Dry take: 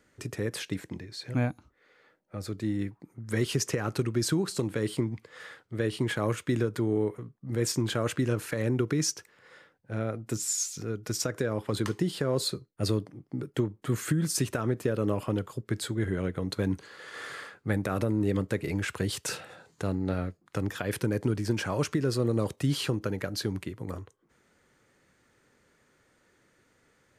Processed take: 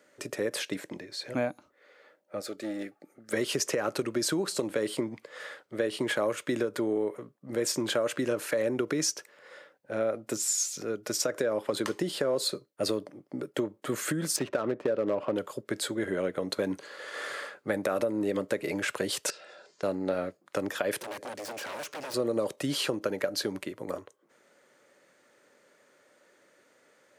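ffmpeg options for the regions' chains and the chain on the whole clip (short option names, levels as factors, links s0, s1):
-filter_complex "[0:a]asettb=1/sr,asplit=3[s0][s1][s2];[s0]atrim=end=2.404[s3];[s1]atrim=start=2.4:end=3.33,asetpts=PTS-STARTPTS,afade=t=in:d=0.004:c=qsin,afade=t=out:st=0.926:d=0.004:c=qsin,equalizer=f=79:t=o:w=2.3:g=-14.5,aeval=exprs='clip(val(0),-1,0.0178)':c=same,asuperstop=centerf=1000:order=20:qfactor=4.4[s4];[s2]atrim=start=3.326[s5];[s3][s4]acrossfade=d=0.004:c1=hsin:c2=qsin[s6];[s6][s5]acrossfade=d=0.004:c1=qsin:c2=hsin,asettb=1/sr,asplit=3[s7][s8][s9];[s7]atrim=end=14.364[s10];[s8]atrim=start=14.36:end=15.36,asetpts=PTS-STARTPTS,afade=t=in:d=0.004:c=qsin,afade=t=out:st=0.996:d=0.004:c=qsin,highshelf=f=9200:g=-10.5,adynamicsmooth=sensitivity=8:basefreq=1800,asoftclip=type=hard:threshold=0.106[s11];[s9]atrim=start=15.356[s12];[s10][s11]acrossfade=d=0.004:c1=hsin:c2=qsin[s13];[s13][s12]acrossfade=d=0.004:c1=qsin:c2=hsin,asettb=1/sr,asplit=3[s14][s15][s16];[s14]atrim=end=19.304[s17];[s15]atrim=start=19.3:end=19.83,asetpts=PTS-STARTPTS,afade=t=in:d=0.004:c=qsin,afade=t=out:st=0.526:d=0.004:c=qsin,highpass=190,equalizer=f=290:t=q:w=4:g=-9,equalizer=f=720:t=q:w=4:g=-6,equalizer=f=1100:t=q:w=4:g=-4,equalizer=f=5000:t=q:w=4:g=8,lowpass=f=7500:w=0.5412,lowpass=f=7500:w=1.3066,acompressor=threshold=0.00251:ratio=3:attack=3.2:release=140:knee=1:detection=peak,aecho=1:1:2.9:0.4,atrim=end_sample=23373[s18];[s16]atrim=start=19.826[s19];[s17][s18]acrossfade=d=0.004:c1=hsin:c2=qsin[s20];[s20][s19]acrossfade=d=0.004:c1=qsin:c2=hsin,asettb=1/sr,asplit=3[s21][s22][s23];[s21]atrim=end=21.004[s24];[s22]atrim=start=21:end=22.14,asetpts=PTS-STARTPTS,afade=t=in:d=0.004:c=qsin,afade=t=out:st=1.136:d=0.004:c=qsin,acrossover=split=260|1700[s25][s26][s27];[s25]acompressor=threshold=0.0126:ratio=4[s28];[s26]acompressor=threshold=0.0158:ratio=4[s29];[s27]acompressor=threshold=0.0112:ratio=4[s30];[s28][s29][s30]amix=inputs=3:normalize=0,aeval=exprs='0.015*(abs(mod(val(0)/0.015+3,4)-2)-1)':c=same[s31];[s23]atrim=start=22.136[s32];[s24][s31]acrossfade=d=0.004:c1=hsin:c2=qsin[s33];[s33][s32]acrossfade=d=0.004:c1=qsin:c2=hsin,highpass=290,equalizer=f=580:t=o:w=0.27:g=10,acompressor=threshold=0.0447:ratio=6,volume=1.41"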